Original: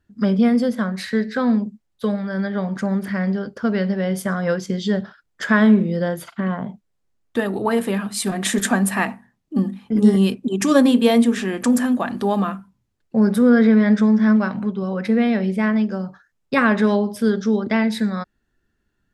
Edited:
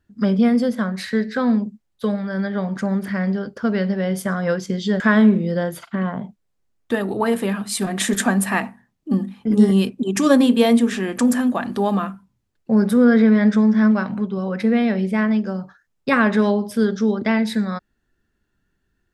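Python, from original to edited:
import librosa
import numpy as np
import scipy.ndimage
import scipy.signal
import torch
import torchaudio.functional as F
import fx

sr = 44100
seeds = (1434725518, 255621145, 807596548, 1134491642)

y = fx.edit(x, sr, fx.cut(start_s=5.0, length_s=0.45), tone=tone)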